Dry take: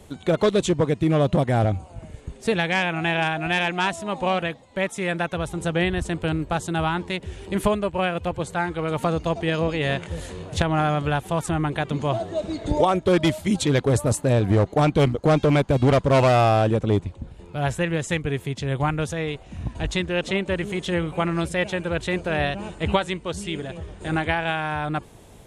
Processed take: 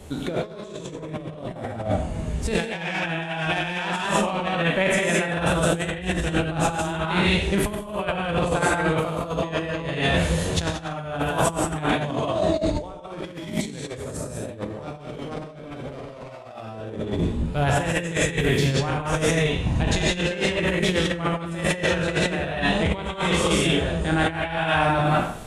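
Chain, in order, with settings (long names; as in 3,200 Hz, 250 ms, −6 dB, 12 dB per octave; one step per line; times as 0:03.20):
peak hold with a decay on every bin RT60 0.58 s
reverb whose tail is shaped and stops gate 220 ms rising, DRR −4.5 dB
compressor whose output falls as the input rises −21 dBFS, ratio −0.5
level −3 dB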